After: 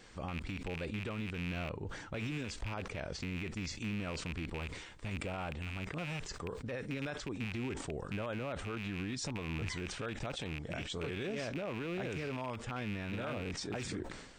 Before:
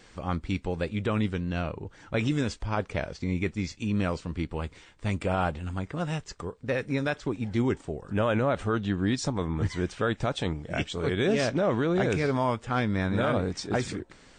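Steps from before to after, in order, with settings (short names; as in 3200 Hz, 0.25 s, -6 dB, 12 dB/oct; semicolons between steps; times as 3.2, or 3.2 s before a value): rattling part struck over -33 dBFS, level -22 dBFS; compressor, threshold -28 dBFS, peak gain reduction 8 dB; limiter -27 dBFS, peak gain reduction 9 dB; sustainer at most 54 dB/s; gain -3 dB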